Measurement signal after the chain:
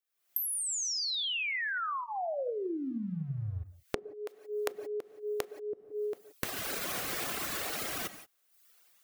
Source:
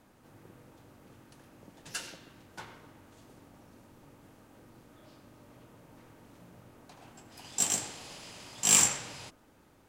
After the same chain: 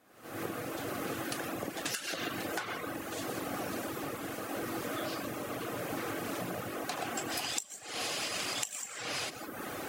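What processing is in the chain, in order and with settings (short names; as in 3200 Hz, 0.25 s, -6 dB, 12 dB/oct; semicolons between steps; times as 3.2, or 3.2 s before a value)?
recorder AGC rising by 70 dB/s; high shelf 3500 Hz -9.5 dB; non-linear reverb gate 0.2 s flat, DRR 6.5 dB; tremolo 0.81 Hz, depth 38%; HPF 630 Hz 6 dB/oct; high shelf 9400 Hz +11.5 dB; reverb removal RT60 0.81 s; compressor 12:1, threshold -32 dBFS; notch 920 Hz, Q 5.7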